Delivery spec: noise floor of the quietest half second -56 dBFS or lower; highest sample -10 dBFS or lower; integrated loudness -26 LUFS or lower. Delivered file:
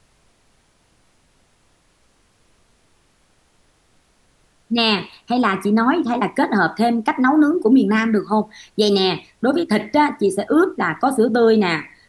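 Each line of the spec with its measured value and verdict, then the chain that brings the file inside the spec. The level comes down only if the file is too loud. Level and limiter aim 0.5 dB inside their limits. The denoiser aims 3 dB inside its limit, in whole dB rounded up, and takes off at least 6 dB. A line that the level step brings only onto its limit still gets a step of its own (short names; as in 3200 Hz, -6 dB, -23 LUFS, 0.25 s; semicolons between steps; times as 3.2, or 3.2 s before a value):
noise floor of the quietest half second -59 dBFS: OK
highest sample -5.5 dBFS: fail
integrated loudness -18.0 LUFS: fail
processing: gain -8.5 dB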